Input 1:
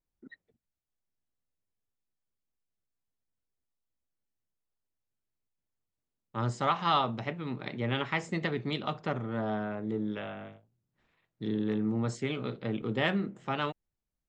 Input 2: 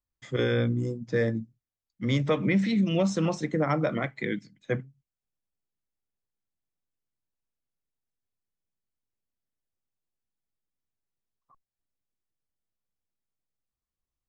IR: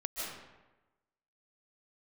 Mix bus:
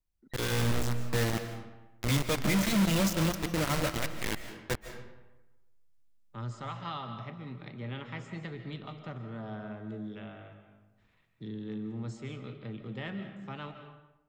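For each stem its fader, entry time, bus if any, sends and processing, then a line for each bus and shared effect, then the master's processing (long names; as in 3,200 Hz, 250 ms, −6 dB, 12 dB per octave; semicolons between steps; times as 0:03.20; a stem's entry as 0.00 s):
−18.5 dB, 0.00 s, send −6.5 dB, harmonic and percussive parts rebalanced harmonic +4 dB; multiband upward and downward compressor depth 40%
−6.0 dB, 0.00 s, send −8 dB, high-shelf EQ 5,800 Hz +8 dB; tuned comb filter 170 Hz, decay 0.43 s, harmonics all, mix 50%; bit reduction 5 bits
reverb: on, RT60 1.1 s, pre-delay 110 ms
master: low-shelf EQ 130 Hz +7.5 dB; automatic gain control gain up to 4.5 dB; parametric band 450 Hz −3.5 dB 2.7 octaves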